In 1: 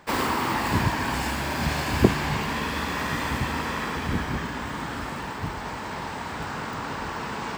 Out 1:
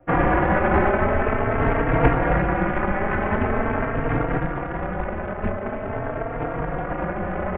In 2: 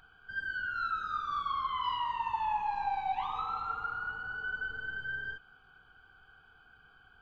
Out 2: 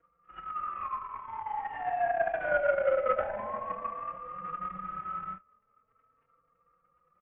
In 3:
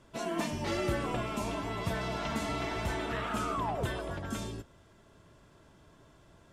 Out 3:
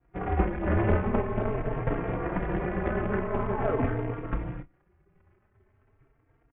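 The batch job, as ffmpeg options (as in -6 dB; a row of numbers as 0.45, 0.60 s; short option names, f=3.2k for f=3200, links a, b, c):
-filter_complex "[0:a]afftdn=nr=14:nf=-49,equalizer=f=1.2k:t=o:w=0.42:g=-10.5,acrossover=split=1300[a][b];[a]acontrast=62[c];[b]tremolo=f=220:d=0.182[d];[c][d]amix=inputs=2:normalize=0,adynamicsmooth=sensitivity=3:basefreq=1.4k,aeval=exprs='1*(cos(1*acos(clip(val(0)/1,-1,1)))-cos(1*PI/2))+0.00631*(cos(2*acos(clip(val(0)/1,-1,1)))-cos(2*PI/2))+0.0158*(cos(4*acos(clip(val(0)/1,-1,1)))-cos(4*PI/2))+0.398*(cos(8*acos(clip(val(0)/1,-1,1)))-cos(8*PI/2))':c=same,aresample=8000,acrusher=bits=3:mode=log:mix=0:aa=0.000001,aresample=44100,apsyclip=2.5dB,volume=5.5dB,asoftclip=hard,volume=-5.5dB,asplit=2[e][f];[f]adelay=29,volume=-13.5dB[g];[e][g]amix=inputs=2:normalize=0,highpass=f=230:t=q:w=0.5412,highpass=f=230:t=q:w=1.307,lowpass=f=2.4k:t=q:w=0.5176,lowpass=f=2.4k:t=q:w=0.7071,lowpass=f=2.4k:t=q:w=1.932,afreqshift=-260,asplit=2[h][i];[i]adelay=3.8,afreqshift=0.45[j];[h][j]amix=inputs=2:normalize=1,volume=2.5dB"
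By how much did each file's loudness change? +4.5, +2.0, +5.0 LU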